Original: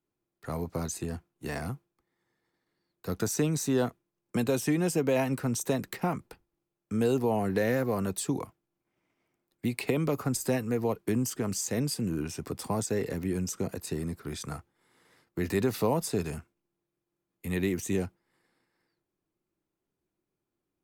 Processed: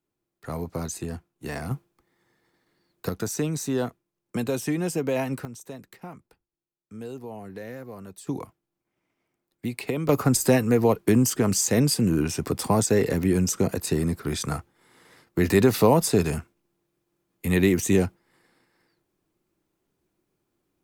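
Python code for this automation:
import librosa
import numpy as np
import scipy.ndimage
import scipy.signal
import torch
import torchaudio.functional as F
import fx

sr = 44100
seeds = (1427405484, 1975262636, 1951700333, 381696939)

y = fx.gain(x, sr, db=fx.steps((0.0, 2.0), (1.71, 9.5), (3.09, 0.5), (5.45, -11.0), (8.27, 0.0), (10.09, 9.0)))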